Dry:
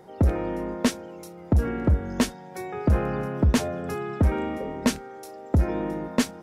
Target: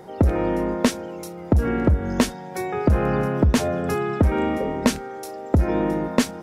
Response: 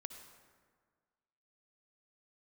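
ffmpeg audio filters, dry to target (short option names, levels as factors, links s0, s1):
-af "acompressor=threshold=0.0891:ratio=6,volume=2.24"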